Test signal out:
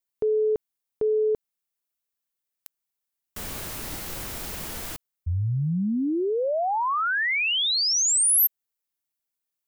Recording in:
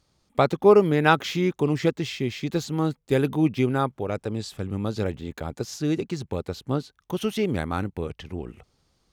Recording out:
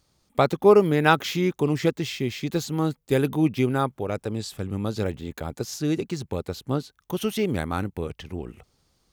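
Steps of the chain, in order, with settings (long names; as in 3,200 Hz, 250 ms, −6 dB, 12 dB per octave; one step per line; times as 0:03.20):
high-shelf EQ 10,000 Hz +10 dB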